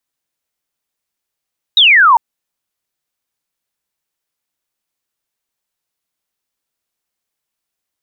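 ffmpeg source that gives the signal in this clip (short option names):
-f lavfi -i "aevalsrc='0.596*clip(t/0.002,0,1)*clip((0.4-t)/0.002,0,1)*sin(2*PI*3900*0.4/log(880/3900)*(exp(log(880/3900)*t/0.4)-1))':d=0.4:s=44100"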